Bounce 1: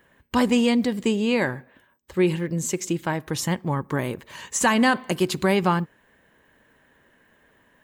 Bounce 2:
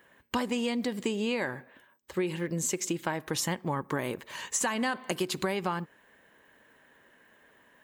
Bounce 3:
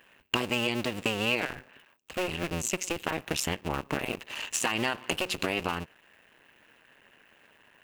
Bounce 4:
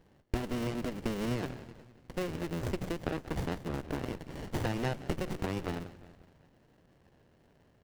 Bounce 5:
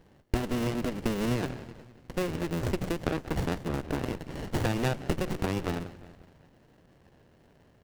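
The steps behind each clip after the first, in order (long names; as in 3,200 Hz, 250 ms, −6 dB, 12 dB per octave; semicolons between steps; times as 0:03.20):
low-shelf EQ 170 Hz −11.5 dB; downward compressor 12 to 1, threshold −26 dBFS, peak gain reduction 11 dB
sub-harmonics by changed cycles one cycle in 2, muted; parametric band 2,700 Hz +12.5 dB 0.32 octaves; level +2 dB
echo with shifted repeats 182 ms, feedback 51%, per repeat −79 Hz, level −13 dB; windowed peak hold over 33 samples; level −5 dB
stylus tracing distortion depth 0.11 ms; level +4.5 dB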